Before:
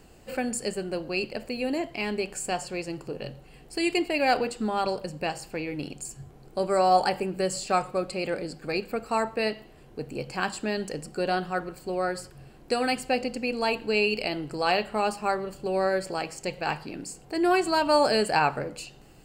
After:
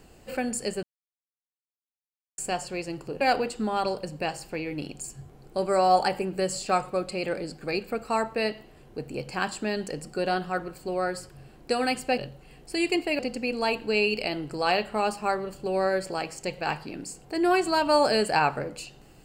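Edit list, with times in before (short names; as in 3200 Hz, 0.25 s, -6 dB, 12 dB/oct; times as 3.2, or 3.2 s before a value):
0.83–2.38 mute
3.21–4.22 move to 13.19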